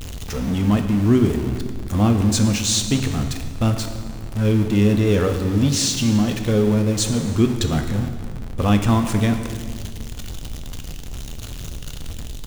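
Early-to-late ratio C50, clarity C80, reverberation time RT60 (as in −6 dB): 8.0 dB, 9.0 dB, 1.8 s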